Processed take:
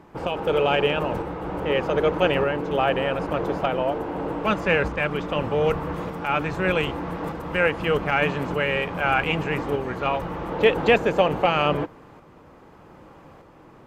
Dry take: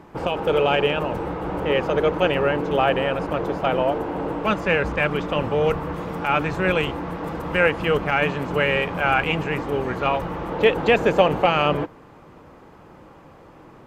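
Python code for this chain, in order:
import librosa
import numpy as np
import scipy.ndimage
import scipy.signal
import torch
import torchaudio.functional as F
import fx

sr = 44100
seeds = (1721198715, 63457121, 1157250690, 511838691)

y = fx.tremolo_shape(x, sr, shape='saw_up', hz=0.82, depth_pct=35)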